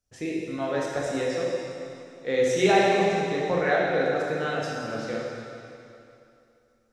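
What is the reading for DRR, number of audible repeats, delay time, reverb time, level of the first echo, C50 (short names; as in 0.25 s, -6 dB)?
-4.5 dB, none, none, 2.7 s, none, -1.5 dB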